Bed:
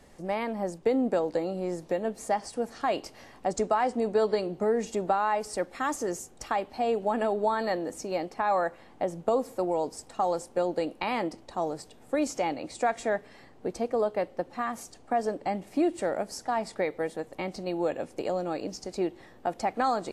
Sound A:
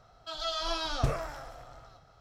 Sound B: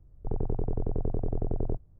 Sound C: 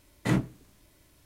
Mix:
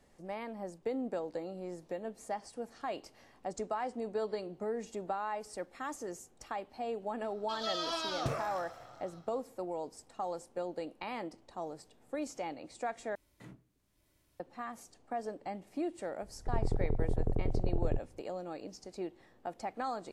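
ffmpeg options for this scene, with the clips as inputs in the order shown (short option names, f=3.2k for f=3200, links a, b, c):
-filter_complex "[0:a]volume=-10.5dB[a];[1:a]highpass=130[b];[3:a]acompressor=threshold=-47dB:ratio=2:attack=0.24:release=297:knee=1:detection=rms[c];[a]asplit=2[d][e];[d]atrim=end=13.154[f];[c]atrim=end=1.25,asetpts=PTS-STARTPTS,volume=-11.5dB[g];[e]atrim=start=14.396[h];[b]atrim=end=2.2,asetpts=PTS-STARTPTS,volume=-3dB,afade=t=in:d=0.004:c=hsin,afade=t=out:st=2.196:d=0.004:c=hsin,adelay=318402S[i];[2:a]atrim=end=1.99,asetpts=PTS-STARTPTS,volume=-2dB,afade=t=in:d=0.004:c=hsin,afade=t=out:st=1.986:d=0.004:c=hsin,adelay=16220[j];[f][g]acrossfade=d=0.004:c1=hsin:c2=hsin[k];[k][h]acrossfade=d=0.004:c1=hsin:c2=hsin[l];[l][i][j]amix=inputs=3:normalize=0"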